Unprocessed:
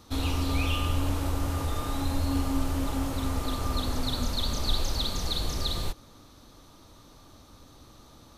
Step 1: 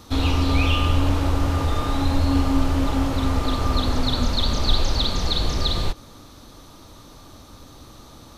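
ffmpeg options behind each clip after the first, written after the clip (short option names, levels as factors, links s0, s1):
-filter_complex "[0:a]acrossover=split=5900[s0][s1];[s1]acompressor=threshold=0.00126:ratio=4:attack=1:release=60[s2];[s0][s2]amix=inputs=2:normalize=0,volume=2.51"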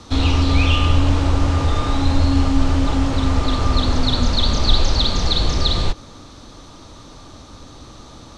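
-filter_complex "[0:a]lowpass=f=8200:w=0.5412,lowpass=f=8200:w=1.3066,acrossover=split=200|2700[s0][s1][s2];[s1]asoftclip=type=tanh:threshold=0.0668[s3];[s0][s3][s2]amix=inputs=3:normalize=0,volume=1.68"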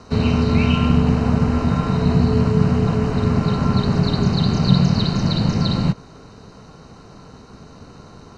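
-af "aeval=exprs='val(0)*sin(2*PI*160*n/s)':c=same,asuperstop=centerf=3400:order=8:qfactor=6,highshelf=f=4800:g=-10.5,volume=1.19"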